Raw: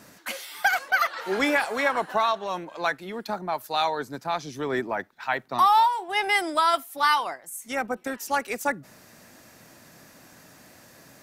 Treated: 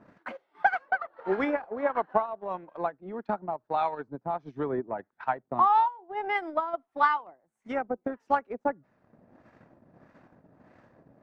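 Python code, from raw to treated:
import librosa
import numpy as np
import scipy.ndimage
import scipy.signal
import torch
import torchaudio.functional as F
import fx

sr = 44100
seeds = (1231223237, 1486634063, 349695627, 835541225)

y = fx.filter_lfo_lowpass(x, sr, shape='sine', hz=1.6, low_hz=640.0, high_hz=1600.0, q=0.78)
y = fx.transient(y, sr, attack_db=7, sustain_db=-11)
y = y * librosa.db_to_amplitude(-4.0)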